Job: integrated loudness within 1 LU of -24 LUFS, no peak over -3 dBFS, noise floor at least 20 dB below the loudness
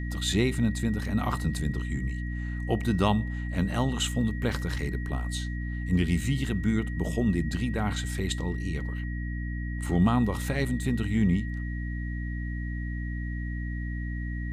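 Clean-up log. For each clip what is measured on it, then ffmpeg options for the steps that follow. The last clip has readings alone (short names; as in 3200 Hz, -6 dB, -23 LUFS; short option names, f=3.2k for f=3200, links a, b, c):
hum 60 Hz; harmonics up to 300 Hz; hum level -30 dBFS; steady tone 1900 Hz; tone level -42 dBFS; loudness -29.5 LUFS; peak -10.0 dBFS; loudness target -24.0 LUFS
-> -af "bandreject=f=60:t=h:w=6,bandreject=f=120:t=h:w=6,bandreject=f=180:t=h:w=6,bandreject=f=240:t=h:w=6,bandreject=f=300:t=h:w=6"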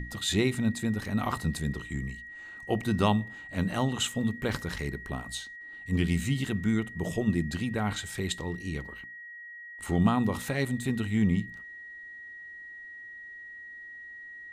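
hum none; steady tone 1900 Hz; tone level -42 dBFS
-> -af "bandreject=f=1.9k:w=30"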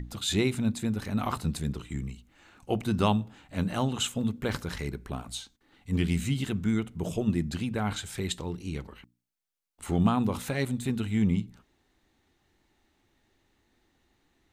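steady tone none; loudness -30.0 LUFS; peak -10.5 dBFS; loudness target -24.0 LUFS
-> -af "volume=6dB"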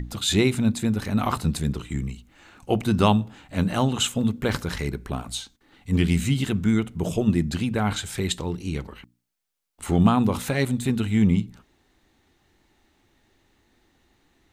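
loudness -24.0 LUFS; peak -4.5 dBFS; noise floor -66 dBFS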